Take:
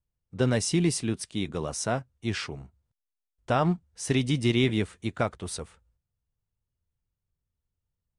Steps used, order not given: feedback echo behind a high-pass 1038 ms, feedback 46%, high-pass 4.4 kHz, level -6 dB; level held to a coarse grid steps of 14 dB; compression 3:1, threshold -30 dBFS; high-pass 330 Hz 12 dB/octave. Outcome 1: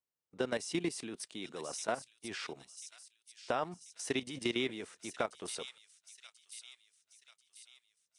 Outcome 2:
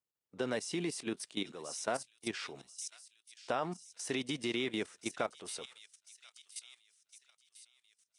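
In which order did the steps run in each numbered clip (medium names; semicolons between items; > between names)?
high-pass > level held to a coarse grid > feedback echo behind a high-pass > compression; feedback echo behind a high-pass > level held to a coarse grid > high-pass > compression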